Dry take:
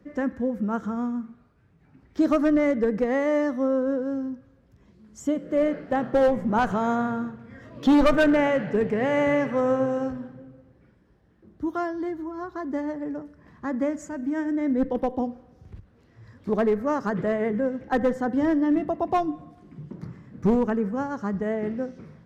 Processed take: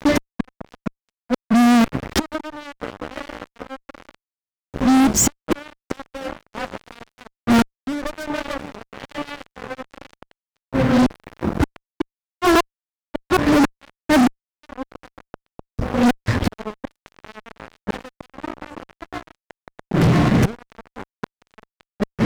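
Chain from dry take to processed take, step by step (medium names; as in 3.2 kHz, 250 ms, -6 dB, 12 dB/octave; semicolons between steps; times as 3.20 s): chunks repeated in reverse 461 ms, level -3 dB; inverted gate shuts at -23 dBFS, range -35 dB; fuzz box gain 48 dB, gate -52 dBFS; trim +1.5 dB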